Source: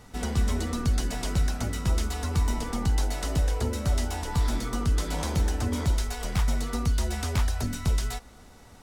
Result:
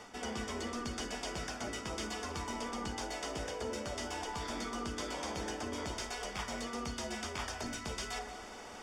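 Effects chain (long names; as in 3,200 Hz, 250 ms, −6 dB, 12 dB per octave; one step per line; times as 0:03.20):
three-way crossover with the lows and the highs turned down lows −18 dB, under 280 Hz, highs −17 dB, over 7,700 Hz
hum removal 52.52 Hz, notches 38
reversed playback
downward compressor 6 to 1, threshold −45 dBFS, peak gain reduction 15 dB
reversed playback
Butterworth band-reject 4,000 Hz, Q 7.6
echo with a time of its own for lows and highs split 1,600 Hz, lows 118 ms, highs 182 ms, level −15 dB
on a send at −12 dB: convolution reverb RT60 0.50 s, pre-delay 5 ms
on the sum: level +7.5 dB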